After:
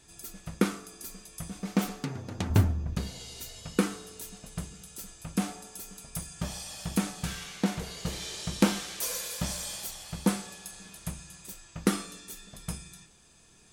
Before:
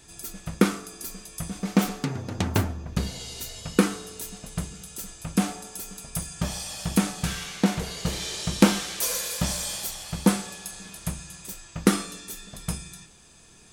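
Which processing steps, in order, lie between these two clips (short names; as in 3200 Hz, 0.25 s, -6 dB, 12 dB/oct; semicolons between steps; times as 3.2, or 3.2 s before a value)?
2.5–2.95 low shelf 200 Hz +12 dB; gain -5.5 dB; MP3 96 kbps 44100 Hz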